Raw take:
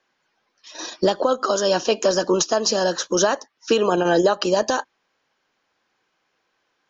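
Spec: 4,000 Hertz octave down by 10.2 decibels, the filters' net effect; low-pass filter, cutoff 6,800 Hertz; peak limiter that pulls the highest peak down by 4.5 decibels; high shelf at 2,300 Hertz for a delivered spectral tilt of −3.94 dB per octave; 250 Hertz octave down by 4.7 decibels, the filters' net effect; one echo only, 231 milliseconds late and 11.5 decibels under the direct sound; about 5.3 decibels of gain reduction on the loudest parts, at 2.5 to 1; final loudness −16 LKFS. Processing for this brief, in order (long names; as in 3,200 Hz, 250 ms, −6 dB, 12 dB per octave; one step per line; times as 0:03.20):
low-pass filter 6,800 Hz
parametric band 250 Hz −8 dB
high-shelf EQ 2,300 Hz −8.5 dB
parametric band 4,000 Hz −4.5 dB
downward compressor 2.5 to 1, threshold −24 dBFS
brickwall limiter −18 dBFS
single-tap delay 231 ms −11.5 dB
level +13 dB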